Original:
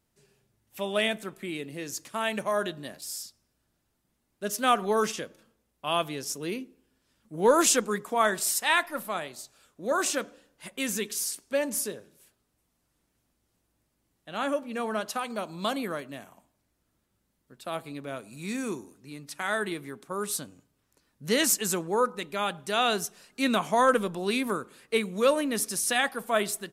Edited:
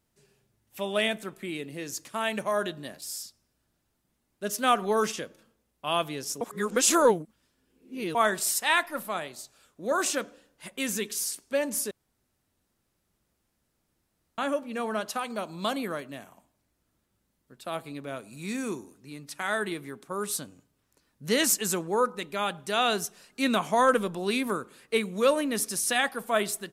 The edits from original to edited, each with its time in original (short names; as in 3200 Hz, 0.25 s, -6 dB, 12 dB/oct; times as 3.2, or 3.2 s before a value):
6.41–8.15 reverse
11.91–14.38 room tone